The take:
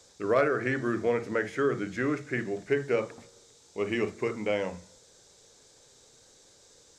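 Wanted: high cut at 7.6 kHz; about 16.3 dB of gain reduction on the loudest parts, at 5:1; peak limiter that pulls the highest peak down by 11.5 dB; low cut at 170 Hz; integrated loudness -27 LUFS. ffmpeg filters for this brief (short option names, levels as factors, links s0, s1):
-af "highpass=170,lowpass=7600,acompressor=threshold=0.01:ratio=5,volume=13.3,alimiter=limit=0.168:level=0:latency=1"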